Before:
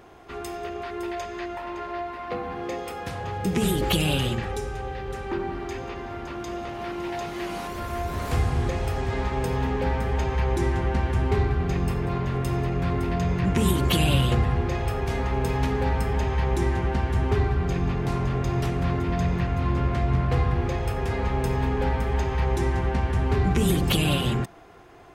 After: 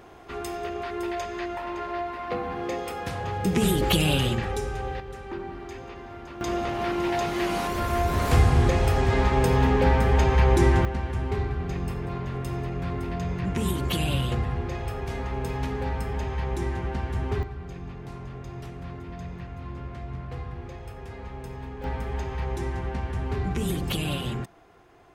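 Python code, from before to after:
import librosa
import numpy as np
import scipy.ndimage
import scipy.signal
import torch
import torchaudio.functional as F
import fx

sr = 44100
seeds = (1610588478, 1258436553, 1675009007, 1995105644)

y = fx.gain(x, sr, db=fx.steps((0.0, 1.0), (5.0, -6.0), (6.41, 5.0), (10.85, -5.0), (17.43, -13.0), (21.84, -6.0)))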